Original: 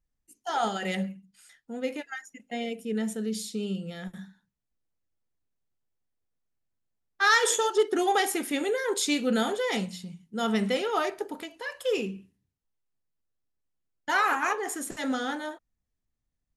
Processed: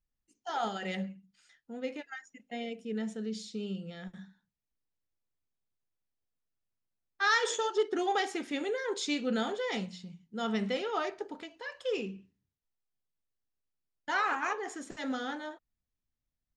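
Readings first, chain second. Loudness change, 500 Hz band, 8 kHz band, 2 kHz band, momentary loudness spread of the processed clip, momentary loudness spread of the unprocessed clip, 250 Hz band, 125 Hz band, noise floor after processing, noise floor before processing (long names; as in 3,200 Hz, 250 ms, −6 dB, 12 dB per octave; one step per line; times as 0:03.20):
−6.0 dB, −5.5 dB, −11.0 dB, −5.5 dB, 15 LU, 15 LU, −5.5 dB, −5.5 dB, below −85 dBFS, −83 dBFS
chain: low-pass filter 6,500 Hz 24 dB per octave
level −5.5 dB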